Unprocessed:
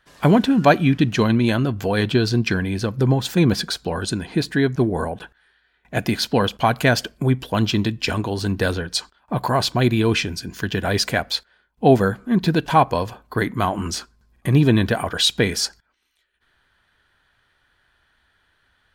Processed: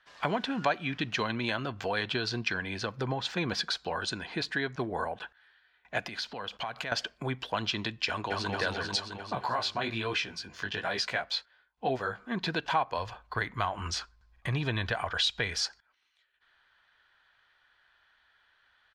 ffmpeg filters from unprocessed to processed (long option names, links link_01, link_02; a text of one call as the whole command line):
ffmpeg -i in.wav -filter_complex "[0:a]asettb=1/sr,asplit=3[link_01][link_02][link_03];[link_01]atrim=end=3.054[link_04];[link_02]atrim=start=3.05:end=3.45,asetpts=PTS-STARTPTS,afade=type=in:duration=0.004:curve=qsin,afade=type=out:start_time=0.396:duration=0.004:curve=qsin,highshelf=frequency=8700:gain=-11[link_05];[link_03]atrim=start=3.446[link_06];[link_04][link_05]acrossfade=duration=0.004:curve1=hsin:curve2=qsin[link_07];[link_07][link_06]acrossfade=duration=0.004:curve1=qsin:curve2=hsin,asettb=1/sr,asplit=3[link_08][link_09][link_10];[link_08]atrim=end=6.034[link_11];[link_09]atrim=start=6.03:end=6.92,asetpts=PTS-STARTPTS,afade=type=in:duration=0.004:curve=qsin,afade=type=out:start_time=0.886:duration=0.004:curve=qsin,acompressor=threshold=-26dB:ratio=10:attack=3.2:release=140:knee=1:detection=peak[link_12];[link_10]atrim=start=6.916[link_13];[link_11][link_12]acrossfade=duration=0.004:curve1=hsin:curve2=qsin[link_14];[link_14][link_13]acrossfade=duration=0.004:curve1=qsin:curve2=hsin,asplit=2[link_15][link_16];[link_16]afade=type=in:start_time=8.08:duration=0.01,afade=type=out:start_time=8.51:duration=0.01,aecho=0:1:220|440|660|880|1100|1320|1540|1760|1980|2200|2420|2640:0.794328|0.55603|0.389221|0.272455|0.190718|0.133503|0.0934519|0.0654163|0.0457914|0.032054|0.0224378|0.0157065[link_17];[link_15][link_17]amix=inputs=2:normalize=0,asettb=1/sr,asplit=3[link_18][link_19][link_20];[link_18]atrim=end=9.354[link_21];[link_19]atrim=start=9.35:end=12.19,asetpts=PTS-STARTPTS,afade=type=in:duration=0.004:curve=qsin,afade=type=out:start_time=2.836:duration=0.004:curve=qsin,flanger=delay=15:depth=5.8:speed=1.2[link_22];[link_20]atrim=start=12.186[link_23];[link_21][link_22]acrossfade=duration=0.004:curve1=hsin:curve2=qsin[link_24];[link_24][link_23]acrossfade=duration=0.004:curve1=qsin:curve2=hsin,asplit=3[link_25][link_26][link_27];[link_25]afade=type=out:start_time=12.97:duration=0.02[link_28];[link_26]asubboost=boost=5.5:cutoff=100,afade=type=in:start_time=12.97:duration=0.02,afade=type=out:start_time=15.6:duration=0.02[link_29];[link_27]afade=type=in:start_time=15.6:duration=0.02[link_30];[link_28][link_29][link_30]amix=inputs=3:normalize=0,acrossover=split=590 6100:gain=0.2 1 0.0708[link_31][link_32][link_33];[link_31][link_32][link_33]amix=inputs=3:normalize=0,acompressor=threshold=-26dB:ratio=2.5,volume=-2dB" out.wav